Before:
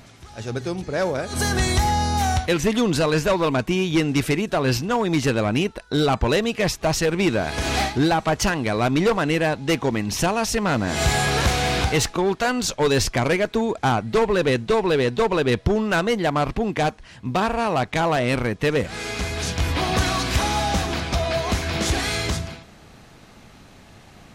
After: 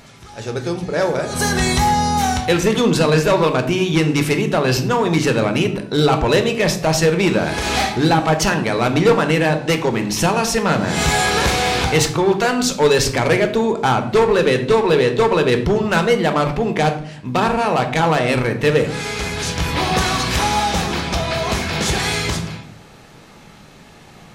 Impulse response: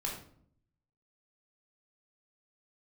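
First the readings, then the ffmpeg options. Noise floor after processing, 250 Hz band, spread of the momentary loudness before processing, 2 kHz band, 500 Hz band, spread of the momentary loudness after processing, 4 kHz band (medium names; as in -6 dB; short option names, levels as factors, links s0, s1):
-43 dBFS, +4.0 dB, 5 LU, +4.5 dB, +5.5 dB, 6 LU, +4.5 dB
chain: -filter_complex "[0:a]asplit=2[s0][s1];[s1]highpass=f=110:w=0.5412,highpass=f=110:w=1.3066[s2];[1:a]atrim=start_sample=2205[s3];[s2][s3]afir=irnorm=-1:irlink=0,volume=0.75[s4];[s0][s4]amix=inputs=2:normalize=0"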